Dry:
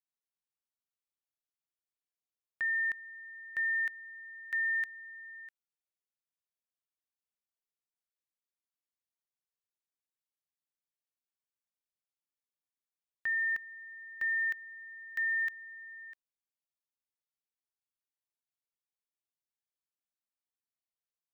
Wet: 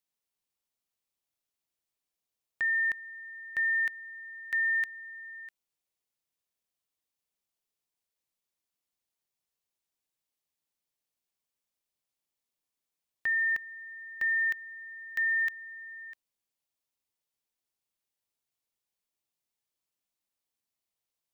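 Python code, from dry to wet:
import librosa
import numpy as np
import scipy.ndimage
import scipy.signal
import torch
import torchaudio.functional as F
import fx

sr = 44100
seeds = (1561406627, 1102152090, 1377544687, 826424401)

y = fx.peak_eq(x, sr, hz=1500.0, db=-4.5, octaves=0.77)
y = y * 10.0 ** (6.5 / 20.0)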